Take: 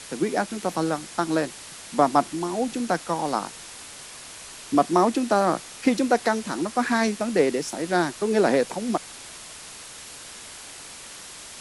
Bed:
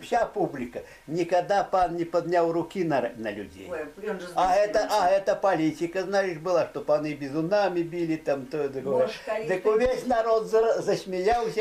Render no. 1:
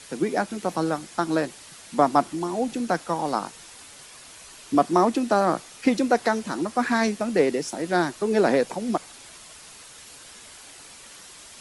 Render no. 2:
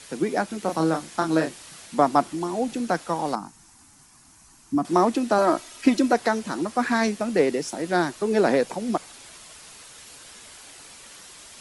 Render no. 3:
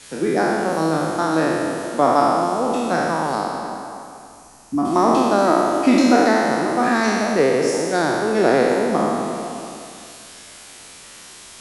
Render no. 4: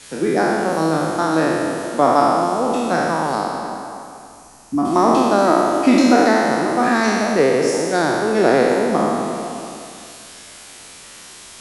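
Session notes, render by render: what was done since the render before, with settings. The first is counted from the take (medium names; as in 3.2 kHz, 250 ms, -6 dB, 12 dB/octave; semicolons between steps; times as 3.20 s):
noise reduction 6 dB, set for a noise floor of -42 dBFS
0.62–1.86 s: doubling 31 ms -5 dB; 3.35–4.85 s: FFT filter 290 Hz 0 dB, 510 Hz -21 dB, 820 Hz -5 dB, 3.5 kHz -17 dB, 5.8 kHz -7 dB; 5.38–6.13 s: comb 3.1 ms
spectral sustain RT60 2.36 s; repeats whose band climbs or falls 119 ms, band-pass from 170 Hz, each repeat 0.7 oct, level -5.5 dB
trim +1.5 dB; peak limiter -1 dBFS, peak gain reduction 0.5 dB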